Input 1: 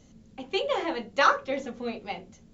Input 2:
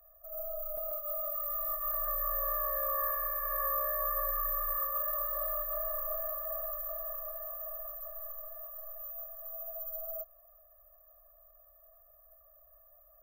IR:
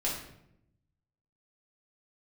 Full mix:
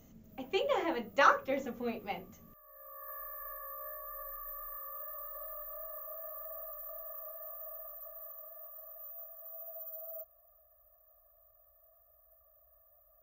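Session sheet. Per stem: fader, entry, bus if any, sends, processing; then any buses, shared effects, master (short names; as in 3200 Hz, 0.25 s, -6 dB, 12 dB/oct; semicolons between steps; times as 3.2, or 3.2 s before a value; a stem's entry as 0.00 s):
-3.5 dB, 0.00 s, no send, bell 4200 Hz -7.5 dB 0.77 oct
-4.5 dB, 0.00 s, no send, HPF 76 Hz 12 dB/oct; low shelf 120 Hz +11.5 dB; limiter -31.5 dBFS, peak gain reduction 10.5 dB; auto duck -19 dB, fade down 0.25 s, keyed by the first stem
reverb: off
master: dry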